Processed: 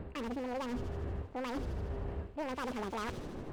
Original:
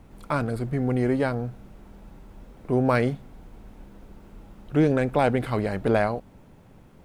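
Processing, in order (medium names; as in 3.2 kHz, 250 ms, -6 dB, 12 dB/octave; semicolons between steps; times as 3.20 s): local Wiener filter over 15 samples; bass shelf 450 Hz +8.5 dB; reverse; compression 12:1, threshold -34 dBFS, peak gain reduction 24.5 dB; reverse; wavefolder -32 dBFS; on a send: feedback echo behind a high-pass 155 ms, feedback 69%, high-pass 1.9 kHz, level -5 dB; on the sum: speed mistake 7.5 ips tape played at 15 ips; trim +1 dB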